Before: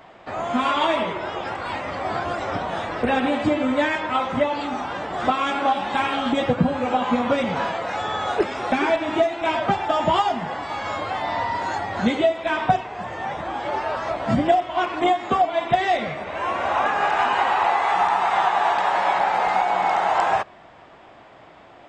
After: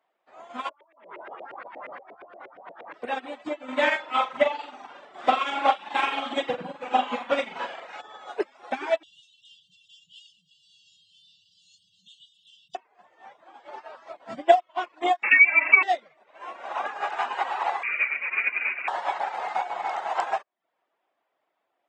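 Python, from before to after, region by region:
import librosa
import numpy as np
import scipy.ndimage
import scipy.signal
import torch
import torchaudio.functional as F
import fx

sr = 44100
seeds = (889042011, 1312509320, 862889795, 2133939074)

y = fx.chain(x, sr, fx.filter_lfo_lowpass(shape='saw_up', hz=8.5, low_hz=420.0, high_hz=2500.0, q=2.4),
    fx.over_compress(threshold_db=-27.0, ratio=-1.0), at=(0.69, 2.94))
y = fx.chain(y, sr, fx.dynamic_eq(hz=2600.0, q=1.4, threshold_db=-38.0, ratio=4.0, max_db=5),
    fx.room_flutter(wall_m=7.4, rt60_s=0.69), at=(3.64, 8.01))
y = fx.chain(y, sr, fx.brickwall_bandstop(low_hz=190.0, high_hz=2700.0),
    fx.low_shelf(hz=230.0, db=-5.0),
    fx.env_flatten(amount_pct=70), at=(9.03, 12.75))
y = fx.chain(y, sr, fx.highpass(hz=280.0, slope=24),
    fx.freq_invert(carrier_hz=3000),
    fx.env_flatten(amount_pct=70), at=(15.23, 15.83))
y = fx.chain(y, sr, fx.highpass(hz=380.0, slope=12),
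    fx.freq_invert(carrier_hz=3200), at=(17.83, 18.88))
y = fx.dereverb_blind(y, sr, rt60_s=0.52)
y = scipy.signal.sosfilt(scipy.signal.butter(2, 370.0, 'highpass', fs=sr, output='sos'), y)
y = fx.upward_expand(y, sr, threshold_db=-35.0, expansion=2.5)
y = F.gain(torch.from_numpy(y), 3.5).numpy()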